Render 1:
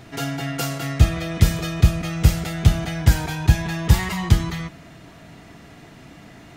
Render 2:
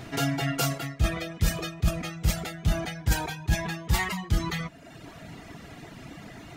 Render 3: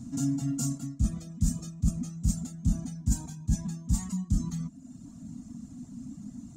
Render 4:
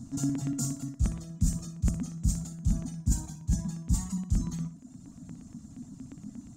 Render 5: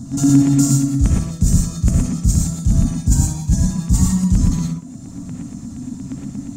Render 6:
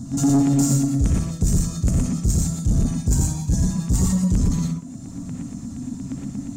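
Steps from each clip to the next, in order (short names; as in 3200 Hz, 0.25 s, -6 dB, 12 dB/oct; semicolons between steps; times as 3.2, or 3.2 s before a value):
reverb removal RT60 0.87 s; reverse; compressor 6:1, threshold -24 dBFS, peak gain reduction 16 dB; reverse; gain +2.5 dB
EQ curve 150 Hz 0 dB, 250 Hz +14 dB, 360 Hz -20 dB, 1100 Hz -15 dB, 2000 Hz -27 dB, 3100 Hz -22 dB, 5000 Hz -9 dB, 7200 Hz +6 dB, 12000 Hz -12 dB; gain -2.5 dB
LFO notch square 8.5 Hz 230–2500 Hz; flutter echo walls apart 10.4 m, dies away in 0.32 s
in parallel at -7 dB: soft clip -26 dBFS, distortion -9 dB; on the sum: non-linear reverb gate 0.14 s rising, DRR -1.5 dB; gain +8.5 dB
soft clip -10.5 dBFS, distortion -14 dB; gain -1.5 dB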